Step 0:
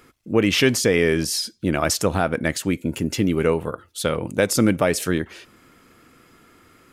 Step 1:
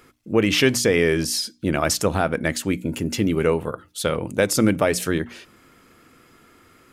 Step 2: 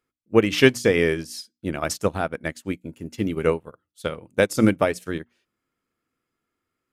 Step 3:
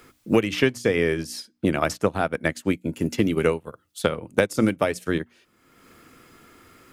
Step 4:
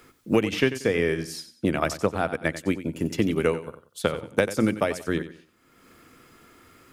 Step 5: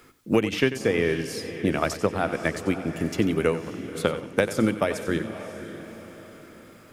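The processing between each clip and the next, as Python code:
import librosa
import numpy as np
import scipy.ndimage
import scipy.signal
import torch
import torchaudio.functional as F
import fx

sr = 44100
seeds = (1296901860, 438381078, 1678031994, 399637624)

y1 = fx.hum_notches(x, sr, base_hz=60, count=5)
y2 = fx.upward_expand(y1, sr, threshold_db=-35.0, expansion=2.5)
y2 = F.gain(torch.from_numpy(y2), 4.0).numpy()
y3 = fx.band_squash(y2, sr, depth_pct=100)
y3 = F.gain(torch.from_numpy(y3), -1.0).numpy()
y4 = fx.echo_feedback(y3, sr, ms=92, feedback_pct=30, wet_db=-13)
y4 = F.gain(torch.from_numpy(y4), -2.0).numpy()
y5 = fx.echo_diffused(y4, sr, ms=562, feedback_pct=45, wet_db=-11.5)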